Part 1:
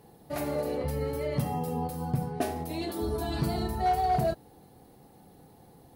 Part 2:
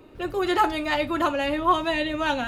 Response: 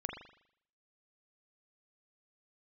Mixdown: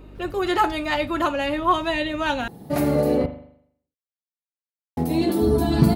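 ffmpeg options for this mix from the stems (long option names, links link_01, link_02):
-filter_complex "[0:a]equalizer=frequency=220:width_type=o:width=1.7:gain=9.5,adelay=2400,volume=3dB,asplit=3[link_01][link_02][link_03];[link_01]atrim=end=3.26,asetpts=PTS-STARTPTS,afade=type=out:start_time=3.256:duration=0.004:curve=hsin[link_04];[link_02]atrim=start=3.26:end=4.97,asetpts=PTS-STARTPTS,volume=0[link_05];[link_03]atrim=start=4.97,asetpts=PTS-STARTPTS,afade=type=in:duration=0.004:curve=hsin[link_06];[link_04][link_05][link_06]concat=n=3:v=0:a=1,asplit=2[link_07][link_08];[link_08]volume=-4dB[link_09];[1:a]aeval=exprs='val(0)+0.00631*(sin(2*PI*50*n/s)+sin(2*PI*2*50*n/s)/2+sin(2*PI*3*50*n/s)/3+sin(2*PI*4*50*n/s)/4+sin(2*PI*5*50*n/s)/5)':channel_layout=same,volume=1dB[link_10];[2:a]atrim=start_sample=2205[link_11];[link_09][link_11]afir=irnorm=-1:irlink=0[link_12];[link_07][link_10][link_12]amix=inputs=3:normalize=0"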